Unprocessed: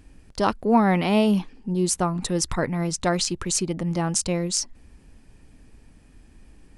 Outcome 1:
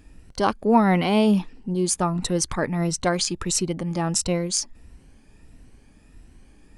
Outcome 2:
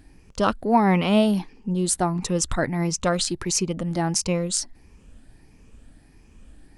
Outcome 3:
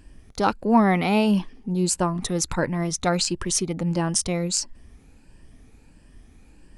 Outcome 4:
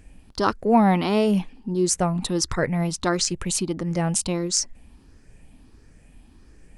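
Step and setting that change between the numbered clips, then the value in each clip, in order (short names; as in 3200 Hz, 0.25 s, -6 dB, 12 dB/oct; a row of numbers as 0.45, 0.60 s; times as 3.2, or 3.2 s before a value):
moving spectral ripple, ripples per octave: 2, 0.79, 1.3, 0.52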